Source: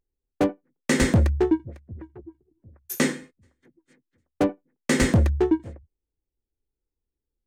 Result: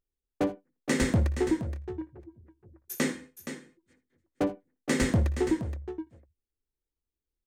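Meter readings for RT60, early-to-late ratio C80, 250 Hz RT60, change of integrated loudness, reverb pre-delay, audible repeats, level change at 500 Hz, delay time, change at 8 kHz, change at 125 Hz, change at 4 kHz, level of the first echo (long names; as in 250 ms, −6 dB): no reverb audible, no reverb audible, no reverb audible, −6.5 dB, no reverb audible, 2, −5.5 dB, 58 ms, −5.5 dB, −5.5 dB, −5.5 dB, −17.0 dB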